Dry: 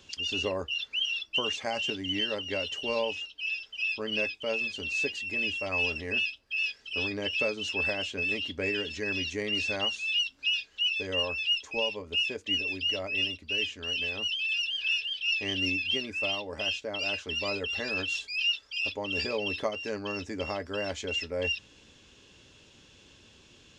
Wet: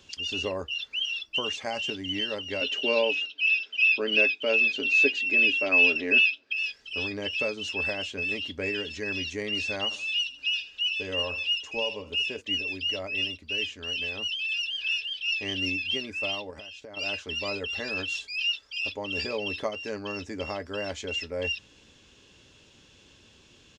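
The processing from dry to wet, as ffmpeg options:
-filter_complex "[0:a]asettb=1/sr,asplit=3[s0][s1][s2];[s0]atrim=end=2.614[s3];[s1]atrim=start=2.61:end=6.53,asetpts=PTS-STARTPTS,afade=t=in:d=0.004:c=qsin,afade=t=out:st=3.916:d=0.004:c=qsin,highpass=180,equalizer=f=270:t=q:w=4:g=10,equalizer=f=400:t=q:w=4:g=8,equalizer=f=610:t=q:w=4:g=5,equalizer=f=1500:t=q:w=4:g=7,equalizer=f=2500:t=q:w=4:g=10,equalizer=f=3700:t=q:w=4:g=6,lowpass=f=7000:w=0.5412,lowpass=f=7000:w=1.3066[s4];[s2]atrim=start=6.526[s5];[s3][s4]acrossfade=d=0.004:c1=hsin:c2=qsin[s6];[s6][s5]acrossfade=d=0.004:c1=qsin:c2=hsin,asplit=3[s7][s8][s9];[s7]afade=t=out:st=9.9:d=0.02[s10];[s8]aecho=1:1:78|156|234:0.2|0.0718|0.0259,afade=t=in:st=9.9:d=0.02,afade=t=out:st=12.4:d=0.02[s11];[s9]afade=t=in:st=12.4:d=0.02[s12];[s10][s11][s12]amix=inputs=3:normalize=0,asettb=1/sr,asplit=3[s13][s14][s15];[s13]atrim=end=16.504[s16];[s14]atrim=start=16.5:end=16.97,asetpts=PTS-STARTPTS,afade=t=in:d=0.004:c=qsin,afade=t=out:st=0.466:d=0.004:c=qsin,acompressor=threshold=0.0112:ratio=16:attack=3.2:release=140:knee=1:detection=peak[s17];[s15]atrim=start=16.966[s18];[s16][s17]acrossfade=d=0.004:c1=hsin:c2=qsin[s19];[s19][s18]acrossfade=d=0.004:c1=qsin:c2=hsin"

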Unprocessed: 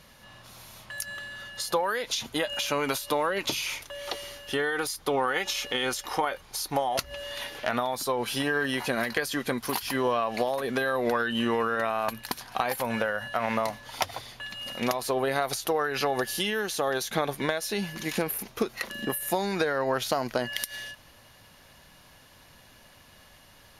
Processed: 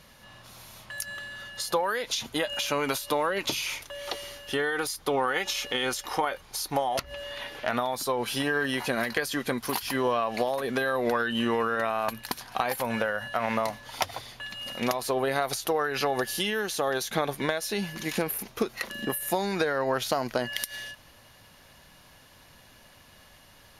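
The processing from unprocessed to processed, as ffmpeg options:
-filter_complex "[0:a]asettb=1/sr,asplit=3[s0][s1][s2];[s0]atrim=end=6.994[s3];[s1]atrim=start=6.99:end=7.68,asetpts=PTS-STARTPTS,afade=t=in:d=0.004:c=qsin,afade=t=out:st=0.686:d=0.004:c=qsin,acrossover=split=3600[s4][s5];[s5]acompressor=threshold=0.00282:ratio=4:attack=1:release=60[s6];[s4][s6]amix=inputs=2:normalize=0[s7];[s2]atrim=start=7.676[s8];[s3][s7]acrossfade=d=0.004:c1=hsin:c2=qsin[s9];[s9][s8]acrossfade=d=0.004:c1=qsin:c2=hsin"

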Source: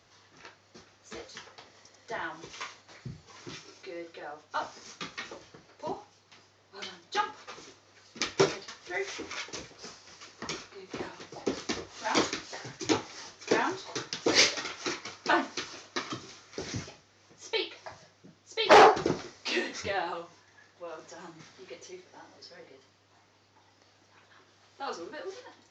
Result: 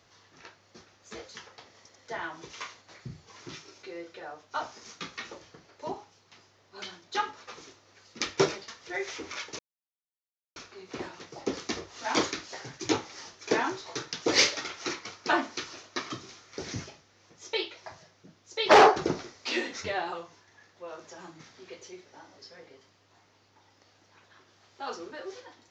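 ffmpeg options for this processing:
-filter_complex "[0:a]asplit=3[s0][s1][s2];[s0]atrim=end=9.59,asetpts=PTS-STARTPTS,afade=t=out:st=9.586:d=0.004:c=hsin[s3];[s1]atrim=start=9.59:end=10.56,asetpts=PTS-STARTPTS,volume=0[s4];[s2]atrim=start=10.56,asetpts=PTS-STARTPTS,afade=t=in:d=0.004:c=hsin[s5];[s3][s4][s5]concat=n=3:v=0:a=1"

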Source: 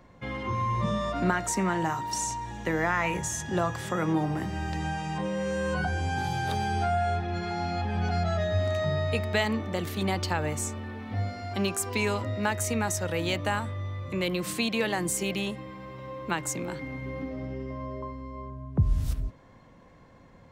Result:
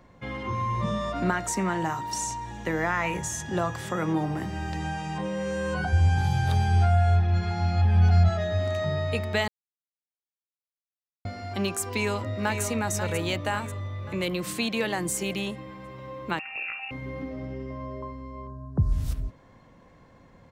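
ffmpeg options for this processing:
-filter_complex "[0:a]asplit=3[s0][s1][s2];[s0]afade=t=out:st=5.92:d=0.02[s3];[s1]asubboost=boost=6.5:cutoff=110,afade=t=in:st=5.92:d=0.02,afade=t=out:st=8.28:d=0.02[s4];[s2]afade=t=in:st=8.28:d=0.02[s5];[s3][s4][s5]amix=inputs=3:normalize=0,asplit=2[s6][s7];[s7]afade=t=in:st=11.84:d=0.01,afade=t=out:st=12.63:d=0.01,aecho=0:1:540|1080|1620|2160|2700|3240:0.421697|0.210848|0.105424|0.0527121|0.026356|0.013178[s8];[s6][s8]amix=inputs=2:normalize=0,asettb=1/sr,asplit=3[s9][s10][s11];[s9]atrim=end=16.394[s12];[s10]atrim=start=16.39:end=16.91,asetpts=PTS-STARTPTS,afade=t=in:d=0.004:c=qsin,afade=t=out:st=0.516:d=0.004:c=qsin,lowpass=f=2500:t=q:w=0.5098,lowpass=f=2500:t=q:w=0.6013,lowpass=f=2500:t=q:w=0.9,lowpass=f=2500:t=q:w=2.563,afreqshift=-2900[s13];[s11]atrim=start=16.906[s14];[s12][s13]acrossfade=d=0.004:c1=hsin:c2=qsin[s15];[s15][s14]acrossfade=d=0.004:c1=qsin:c2=hsin,asettb=1/sr,asplit=3[s16][s17][s18];[s16]atrim=end=18.474[s19];[s17]atrim=start=18.47:end=18.92,asetpts=PTS-STARTPTS,afade=t=in:d=0.004:c=qsin,afade=t=out:st=0.446:d=0.004:c=qsin,asuperstop=centerf=2700:order=8:qfactor=1.2[s20];[s18]atrim=start=18.916[s21];[s19][s20]acrossfade=d=0.004:c1=hsin:c2=qsin[s22];[s22][s21]acrossfade=d=0.004:c1=qsin:c2=hsin,asplit=3[s23][s24][s25];[s23]atrim=end=9.48,asetpts=PTS-STARTPTS,afade=t=out:st=9.476:d=0.004:c=hsin[s26];[s24]atrim=start=9.48:end=11.25,asetpts=PTS-STARTPTS,volume=0[s27];[s25]atrim=start=11.25,asetpts=PTS-STARTPTS,afade=t=in:d=0.004:c=hsin[s28];[s26][s27][s28]concat=n=3:v=0:a=1"

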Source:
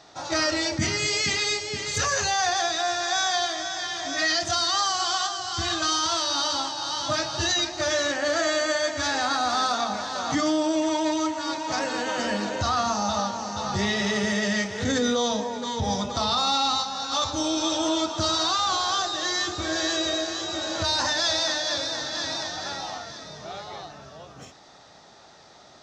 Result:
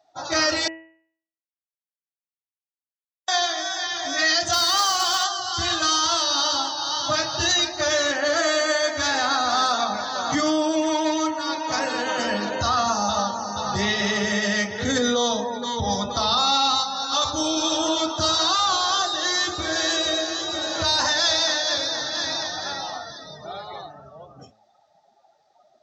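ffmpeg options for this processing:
-filter_complex "[0:a]asettb=1/sr,asplit=3[s0][s1][s2];[s0]atrim=end=4.534[s3];[s1]atrim=start=4.53:end=5.24,asetpts=PTS-STARTPTS,afade=t=in:d=0.004:c=qsin,afade=t=out:st=0.706:d=0.004:c=qsin,acrusher=bits=2:mode=log:mix=0:aa=0.000001[s4];[s2]atrim=start=5.236[s5];[s3][s4]acrossfade=d=0.004:c1=hsin:c2=qsin[s6];[s6][s5]acrossfade=d=0.004:c1=qsin:c2=hsin,asplit=3[s7][s8][s9];[s7]atrim=end=0.68,asetpts=PTS-STARTPTS,afade=t=out:st=0.676:d=0.004:c=hsin[s10];[s8]atrim=start=0.68:end=3.28,asetpts=PTS-STARTPTS,volume=0[s11];[s9]atrim=start=3.28,asetpts=PTS-STARTPTS,afade=t=in:d=0.004:c=hsin[s12];[s10][s11][s12]concat=n=3:v=0:a=1,afftdn=nr=24:nf=-41,lowshelf=f=430:g=-4,bandreject=f=108:t=h:w=4,bandreject=f=216:t=h:w=4,bandreject=f=324:t=h:w=4,bandreject=f=432:t=h:w=4,bandreject=f=540:t=h:w=4,bandreject=f=648:t=h:w=4,bandreject=f=756:t=h:w=4,bandreject=f=864:t=h:w=4,bandreject=f=972:t=h:w=4,bandreject=f=1080:t=h:w=4,bandreject=f=1188:t=h:w=4,bandreject=f=1296:t=h:w=4,bandreject=f=1404:t=h:w=4,bandreject=f=1512:t=h:w=4,bandreject=f=1620:t=h:w=4,bandreject=f=1728:t=h:w=4,bandreject=f=1836:t=h:w=4,bandreject=f=1944:t=h:w=4,bandreject=f=2052:t=h:w=4,bandreject=f=2160:t=h:w=4,bandreject=f=2268:t=h:w=4,bandreject=f=2376:t=h:w=4,bandreject=f=2484:t=h:w=4,bandreject=f=2592:t=h:w=4,bandreject=f=2700:t=h:w=4,bandreject=f=2808:t=h:w=4,bandreject=f=2916:t=h:w=4,volume=1.58"

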